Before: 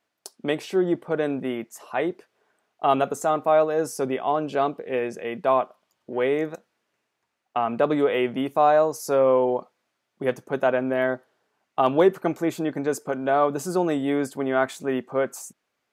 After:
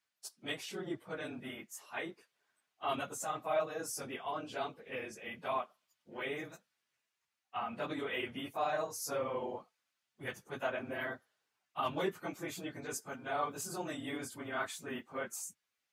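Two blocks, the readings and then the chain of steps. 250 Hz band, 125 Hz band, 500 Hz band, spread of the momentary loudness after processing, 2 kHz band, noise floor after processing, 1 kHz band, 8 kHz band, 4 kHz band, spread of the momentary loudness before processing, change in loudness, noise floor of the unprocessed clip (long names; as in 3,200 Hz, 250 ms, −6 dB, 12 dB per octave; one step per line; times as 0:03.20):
−17.5 dB, −14.5 dB, −18.0 dB, 10 LU, −9.0 dB, below −85 dBFS, −14.5 dB, −4.5 dB, −6.0 dB, 11 LU, −15.5 dB, −79 dBFS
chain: random phases in long frames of 50 ms
guitar amp tone stack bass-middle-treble 5-5-5
level +1.5 dB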